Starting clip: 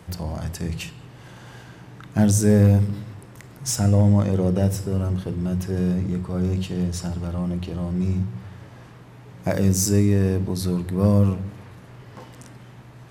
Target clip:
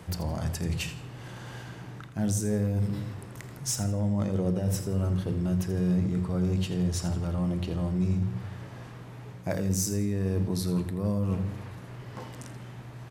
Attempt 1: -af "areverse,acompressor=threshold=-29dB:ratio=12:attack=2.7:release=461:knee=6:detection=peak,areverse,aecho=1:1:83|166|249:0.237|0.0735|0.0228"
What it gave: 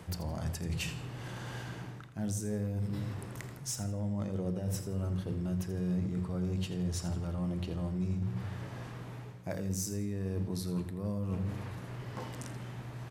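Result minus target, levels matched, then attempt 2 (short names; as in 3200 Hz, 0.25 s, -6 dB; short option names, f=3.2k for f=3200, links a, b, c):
compressor: peak gain reduction +7.5 dB
-af "areverse,acompressor=threshold=-21dB:ratio=12:attack=2.7:release=461:knee=6:detection=peak,areverse,aecho=1:1:83|166|249:0.237|0.0735|0.0228"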